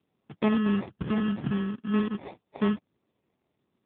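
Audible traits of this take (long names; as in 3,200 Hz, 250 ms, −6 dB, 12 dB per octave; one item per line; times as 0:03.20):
phaser sweep stages 12, 0.53 Hz, lowest notch 510–1,300 Hz
aliases and images of a low sample rate 1,500 Hz, jitter 0%
AMR narrowband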